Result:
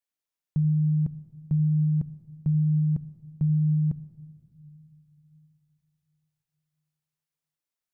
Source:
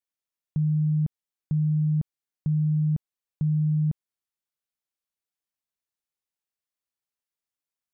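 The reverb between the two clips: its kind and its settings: simulated room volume 3300 m³, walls mixed, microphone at 0.4 m

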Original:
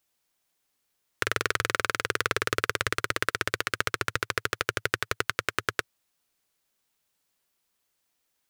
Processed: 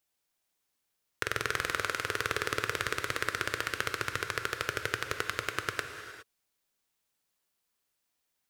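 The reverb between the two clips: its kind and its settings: gated-style reverb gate 440 ms flat, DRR 6 dB; trim -5 dB

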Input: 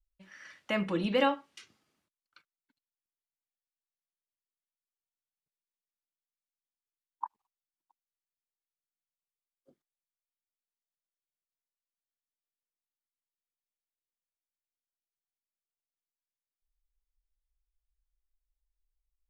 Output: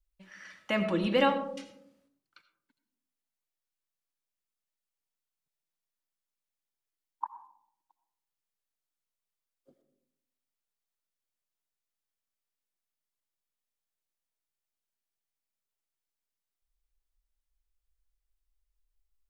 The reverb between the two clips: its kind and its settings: algorithmic reverb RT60 0.76 s, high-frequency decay 0.25×, pre-delay 45 ms, DRR 10 dB; trim +1.5 dB

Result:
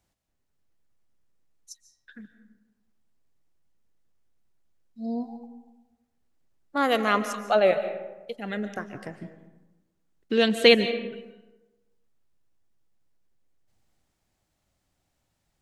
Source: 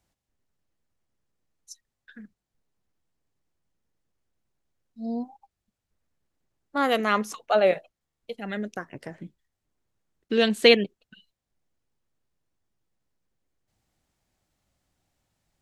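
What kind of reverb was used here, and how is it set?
algorithmic reverb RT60 1.1 s, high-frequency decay 0.5×, pre-delay 105 ms, DRR 10.5 dB

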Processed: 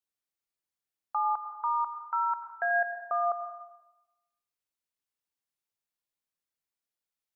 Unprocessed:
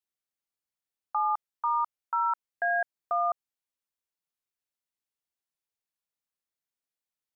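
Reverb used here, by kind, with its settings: plate-style reverb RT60 0.98 s, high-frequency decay 0.85×, pre-delay 80 ms, DRR 7 dB; trim -1.5 dB

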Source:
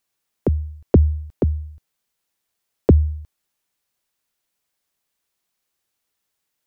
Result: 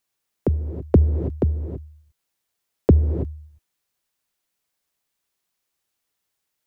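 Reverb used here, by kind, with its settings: gated-style reverb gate 350 ms rising, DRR 10 dB; trim -1.5 dB

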